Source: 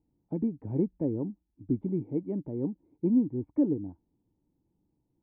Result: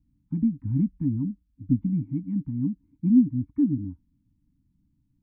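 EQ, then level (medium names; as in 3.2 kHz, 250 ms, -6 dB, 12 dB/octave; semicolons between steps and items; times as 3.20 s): Chebyshev band-stop 280–690 Hz, order 3; Butterworth band-stop 690 Hz, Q 0.88; tilt EQ -2 dB/octave; +3.0 dB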